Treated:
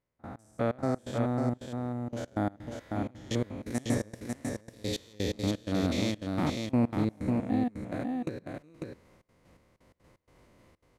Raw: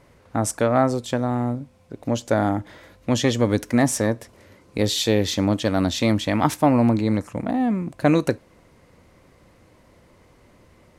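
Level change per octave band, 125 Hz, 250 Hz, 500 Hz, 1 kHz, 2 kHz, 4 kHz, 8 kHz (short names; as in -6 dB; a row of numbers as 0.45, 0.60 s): -9.0, -9.0, -11.5, -13.0, -12.0, -12.5, -15.0 dB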